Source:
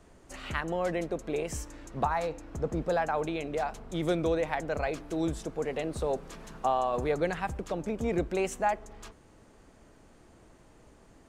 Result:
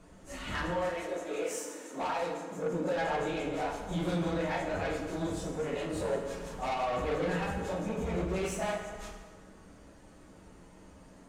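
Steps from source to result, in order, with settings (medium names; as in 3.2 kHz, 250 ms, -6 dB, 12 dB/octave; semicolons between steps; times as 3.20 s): phase randomisation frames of 100 ms; 0.74–2.98 s: high-pass 460 Hz -> 150 Hz 24 dB/octave; saturation -31 dBFS, distortion -9 dB; reverberation RT60 1.6 s, pre-delay 3 ms, DRR 1 dB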